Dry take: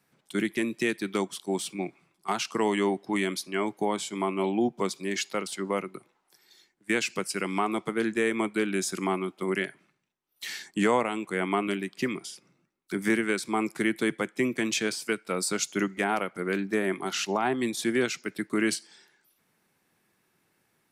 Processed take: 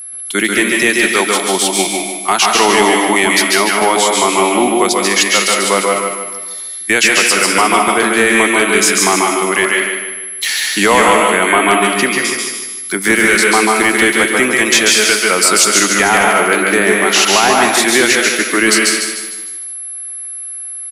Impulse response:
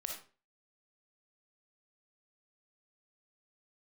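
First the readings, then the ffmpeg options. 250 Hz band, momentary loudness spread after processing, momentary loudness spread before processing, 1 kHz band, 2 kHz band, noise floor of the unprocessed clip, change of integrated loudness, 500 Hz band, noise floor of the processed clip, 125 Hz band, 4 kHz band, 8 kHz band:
+11.5 dB, 12 LU, 7 LU, +19.0 dB, +21.0 dB, -73 dBFS, +18.0 dB, +15.0 dB, -26 dBFS, +9.0 dB, +22.0 dB, +23.5 dB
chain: -filter_complex "[0:a]highpass=f=870:p=1,aecho=1:1:152|304|456|608|760:0.501|0.221|0.097|0.0427|0.0188,aeval=exprs='val(0)+0.00501*sin(2*PI*11000*n/s)':c=same,asplit=2[a][b];[1:a]atrim=start_sample=2205,adelay=138[c];[b][c]afir=irnorm=-1:irlink=0,volume=-1.5dB[d];[a][d]amix=inputs=2:normalize=0,apsyclip=22.5dB,volume=-3dB"

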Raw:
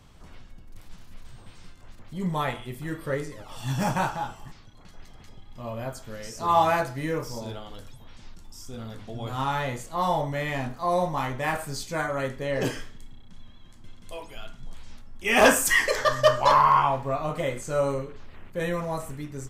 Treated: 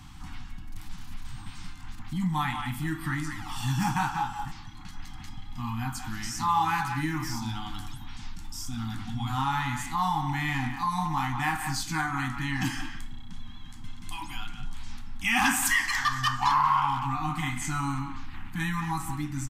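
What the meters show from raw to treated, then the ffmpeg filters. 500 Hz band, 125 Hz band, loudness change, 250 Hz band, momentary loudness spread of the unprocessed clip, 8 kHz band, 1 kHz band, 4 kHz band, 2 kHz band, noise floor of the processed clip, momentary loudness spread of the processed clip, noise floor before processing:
under -25 dB, +1.5 dB, -3.5 dB, +0.5 dB, 21 LU, -1.0 dB, -2.0 dB, -0.5 dB, -1.5 dB, -42 dBFS, 21 LU, -48 dBFS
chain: -filter_complex "[0:a]asplit=2[a][b];[b]adelay=180,highpass=300,lowpass=3.4k,asoftclip=type=hard:threshold=-18dB,volume=-9dB[c];[a][c]amix=inputs=2:normalize=0,afftfilt=real='re*(1-between(b*sr/4096,330,730))':imag='im*(1-between(b*sr/4096,330,730))':win_size=4096:overlap=0.75,acompressor=threshold=-37dB:ratio=2,volume=7dB"

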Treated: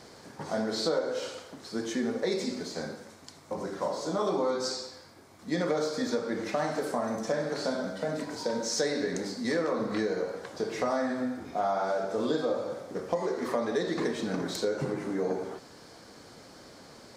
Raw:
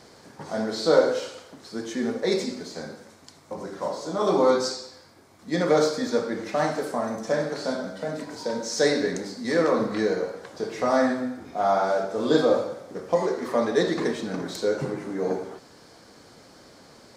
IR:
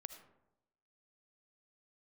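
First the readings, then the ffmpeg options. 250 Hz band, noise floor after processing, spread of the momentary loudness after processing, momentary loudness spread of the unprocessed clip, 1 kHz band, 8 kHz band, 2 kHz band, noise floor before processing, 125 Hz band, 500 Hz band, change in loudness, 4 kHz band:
-4.5 dB, -52 dBFS, 17 LU, 15 LU, -5.5 dB, -2.5 dB, -5.0 dB, -52 dBFS, -4.0 dB, -6.0 dB, -6.0 dB, -3.5 dB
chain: -af "acompressor=threshold=-26dB:ratio=5"

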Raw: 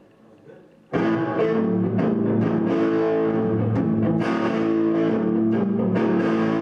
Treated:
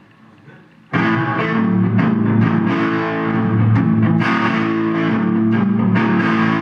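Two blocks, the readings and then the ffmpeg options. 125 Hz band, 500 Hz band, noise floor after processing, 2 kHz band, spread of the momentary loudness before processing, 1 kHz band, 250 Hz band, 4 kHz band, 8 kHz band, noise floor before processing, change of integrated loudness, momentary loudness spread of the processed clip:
+9.0 dB, -2.0 dB, -47 dBFS, +12.5 dB, 2 LU, +8.5 dB, +5.0 dB, +10.0 dB, n/a, -52 dBFS, +5.5 dB, 3 LU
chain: -af "equalizer=f=125:t=o:w=1:g=9,equalizer=f=250:t=o:w=1:g=4,equalizer=f=500:t=o:w=1:g=-11,equalizer=f=1k:t=o:w=1:g=8,equalizer=f=2k:t=o:w=1:g=10,equalizer=f=4k:t=o:w=1:g=6,volume=2dB"

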